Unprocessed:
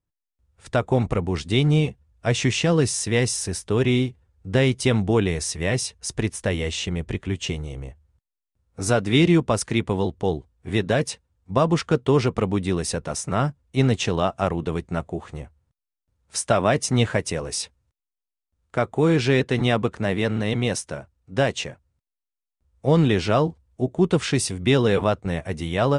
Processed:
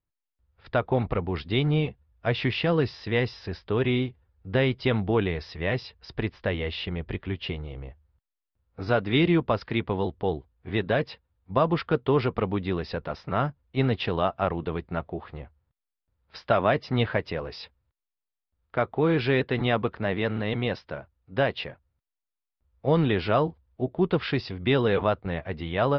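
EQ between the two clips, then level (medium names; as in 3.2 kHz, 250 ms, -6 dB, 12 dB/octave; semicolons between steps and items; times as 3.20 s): Chebyshev low-pass 5 kHz, order 6; distance through air 180 m; peaking EQ 160 Hz -4.5 dB 2.8 oct; 0.0 dB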